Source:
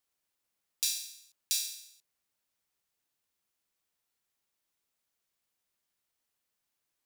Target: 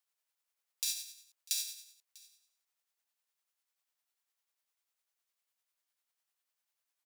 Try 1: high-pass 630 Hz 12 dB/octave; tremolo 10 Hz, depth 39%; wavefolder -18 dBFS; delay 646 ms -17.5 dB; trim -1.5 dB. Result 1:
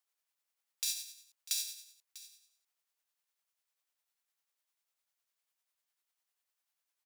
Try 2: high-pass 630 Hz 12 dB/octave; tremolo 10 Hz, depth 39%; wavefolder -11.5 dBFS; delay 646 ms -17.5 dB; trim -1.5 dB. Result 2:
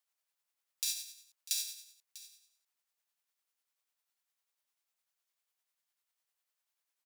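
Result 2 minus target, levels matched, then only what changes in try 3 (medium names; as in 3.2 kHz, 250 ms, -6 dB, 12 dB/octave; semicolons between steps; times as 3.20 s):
echo-to-direct +6 dB
change: delay 646 ms -23.5 dB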